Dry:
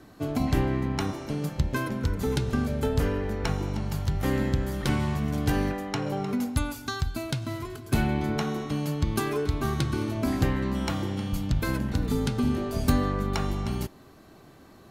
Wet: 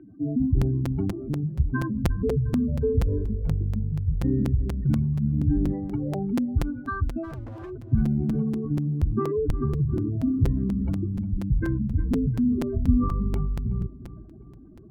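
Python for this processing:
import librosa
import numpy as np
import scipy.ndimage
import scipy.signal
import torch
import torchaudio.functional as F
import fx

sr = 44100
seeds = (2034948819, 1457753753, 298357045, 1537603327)

y = fx.spec_expand(x, sr, power=3.4)
y = scipy.signal.sosfilt(scipy.signal.butter(6, 2600.0, 'lowpass', fs=sr, output='sos'), y)
y = fx.peak_eq(y, sr, hz=850.0, db=-9.5, octaves=0.35)
y = fx.clip_hard(y, sr, threshold_db=-39.5, at=(7.23, 7.69), fade=0.02)
y = fx.echo_feedback(y, sr, ms=355, feedback_pct=48, wet_db=-16)
y = fx.buffer_crackle(y, sr, first_s=0.61, period_s=0.24, block=256, kind='repeat')
y = y * librosa.db_to_amplitude(3.5)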